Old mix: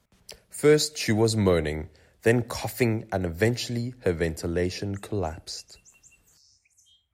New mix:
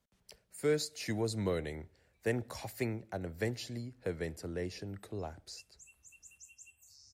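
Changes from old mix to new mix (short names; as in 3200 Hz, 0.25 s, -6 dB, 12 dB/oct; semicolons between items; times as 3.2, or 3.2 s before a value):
speech -12.0 dB; background: entry +0.55 s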